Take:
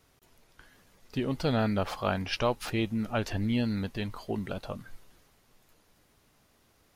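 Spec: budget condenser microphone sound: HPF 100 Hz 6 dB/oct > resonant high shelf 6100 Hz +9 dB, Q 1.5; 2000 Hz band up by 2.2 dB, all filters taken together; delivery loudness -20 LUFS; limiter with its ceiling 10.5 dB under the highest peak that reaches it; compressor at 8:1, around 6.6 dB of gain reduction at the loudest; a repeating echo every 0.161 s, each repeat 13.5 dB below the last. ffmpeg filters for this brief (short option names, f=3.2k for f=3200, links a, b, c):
-af "equalizer=f=2k:t=o:g=4,acompressor=threshold=-29dB:ratio=8,alimiter=level_in=5dB:limit=-24dB:level=0:latency=1,volume=-5dB,highpass=f=100:p=1,highshelf=f=6.1k:t=q:w=1.5:g=9,aecho=1:1:161|322:0.211|0.0444,volume=19.5dB"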